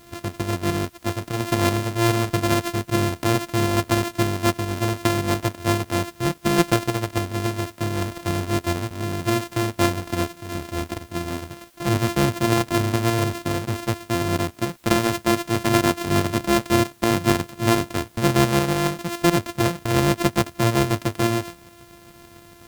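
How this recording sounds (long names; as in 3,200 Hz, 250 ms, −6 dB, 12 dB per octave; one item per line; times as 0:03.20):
a buzz of ramps at a fixed pitch in blocks of 128 samples
tremolo saw up 7.1 Hz, depth 40%
a quantiser's noise floor 10 bits, dither triangular
AAC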